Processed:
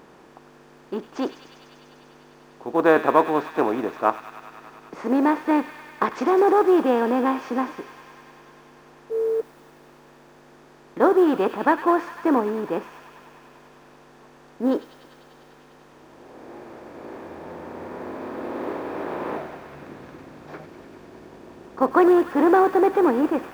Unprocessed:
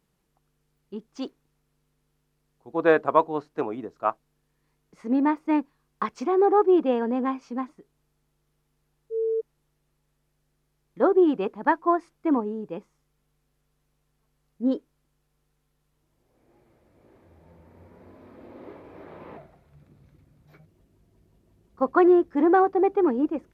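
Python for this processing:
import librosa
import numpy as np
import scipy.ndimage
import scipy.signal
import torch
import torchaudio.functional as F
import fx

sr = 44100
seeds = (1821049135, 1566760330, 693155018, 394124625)

p1 = fx.bin_compress(x, sr, power=0.6)
p2 = fx.quant_companded(p1, sr, bits=8)
y = p2 + fx.echo_wet_highpass(p2, sr, ms=99, feedback_pct=84, hz=2000.0, wet_db=-7.5, dry=0)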